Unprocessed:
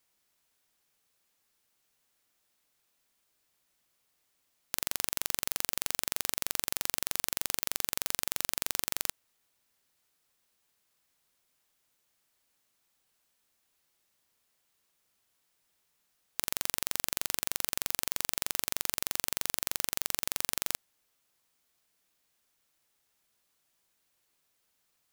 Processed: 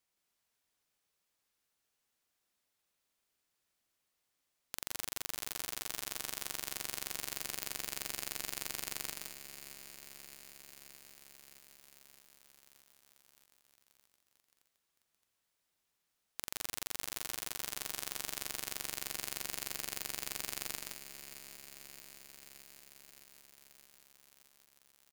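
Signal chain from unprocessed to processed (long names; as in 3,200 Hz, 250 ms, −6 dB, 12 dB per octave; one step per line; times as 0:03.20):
high-shelf EQ 12,000 Hz −4 dB
on a send: loudspeakers that aren't time-aligned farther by 56 metres −4 dB, 73 metres −10 dB
on the sum: feedback echo at a low word length 618 ms, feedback 80%, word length 6 bits, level −11.5 dB
level −7.5 dB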